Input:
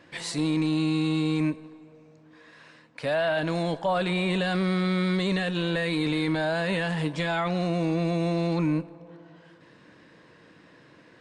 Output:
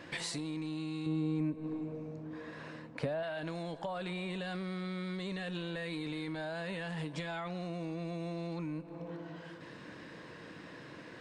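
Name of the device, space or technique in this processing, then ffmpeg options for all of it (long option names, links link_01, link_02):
serial compression, peaks first: -filter_complex "[0:a]acompressor=threshold=-35dB:ratio=6,acompressor=threshold=-43dB:ratio=2.5,asettb=1/sr,asplit=3[link_01][link_02][link_03];[link_01]atrim=end=1.064[link_04];[link_02]atrim=start=1.06:end=3.23,asetpts=PTS-STARTPTS,afade=type=in:duration=0.004:curve=qsin,afade=type=out:start_time=2.166:duration=0.004:curve=qsin,tiltshelf=frequency=1100:gain=7[link_05];[link_03]atrim=start=3.226[link_06];[link_04][link_05]acrossfade=duration=0.004:curve1=hsin:curve2=qsin[link_07];[link_07][link_06]acrossfade=duration=0.004:curve1=qsin:curve2=hsin,volume=4.5dB"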